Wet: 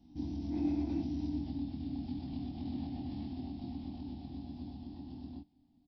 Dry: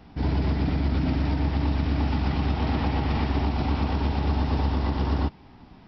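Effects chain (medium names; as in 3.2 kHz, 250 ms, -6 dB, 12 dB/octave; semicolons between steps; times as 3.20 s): Doppler pass-by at 1.41 s, 18 m/s, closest 3.1 m; compression 12:1, threshold -41 dBFS, peak gain reduction 21 dB; FFT filter 170 Hz 0 dB, 290 Hz +12 dB, 450 Hz -15 dB, 740 Hz -2 dB, 1.3 kHz -21 dB, 2.4 kHz -11 dB, 3.5 kHz 0 dB, 5.6 kHz +2 dB; time-frequency box 0.50–1.01 s, 290–2700 Hz +9 dB; doubling 24 ms -3 dB; trim +2 dB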